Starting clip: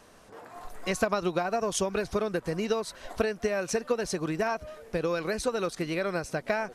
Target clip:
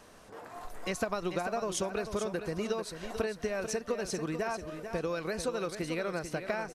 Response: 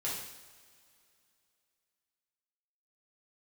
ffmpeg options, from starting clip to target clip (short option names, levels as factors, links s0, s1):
-filter_complex "[0:a]acompressor=threshold=0.0112:ratio=1.5,asplit=2[s0][s1];[s1]aecho=0:1:442|884|1326:0.355|0.0887|0.0222[s2];[s0][s2]amix=inputs=2:normalize=0"